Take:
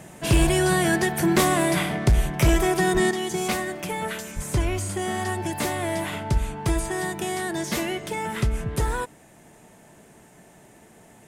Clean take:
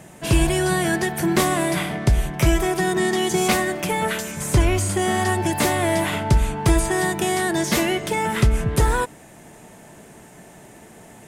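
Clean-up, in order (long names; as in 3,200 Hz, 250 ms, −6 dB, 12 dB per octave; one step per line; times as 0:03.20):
clipped peaks rebuilt −12.5 dBFS
0:02.93–0:03.05: high-pass filter 140 Hz 24 dB per octave
0:03.11: level correction +6.5 dB
0:04.35–0:04.47: high-pass filter 140 Hz 24 dB per octave
0:06.33–0:06.45: high-pass filter 140 Hz 24 dB per octave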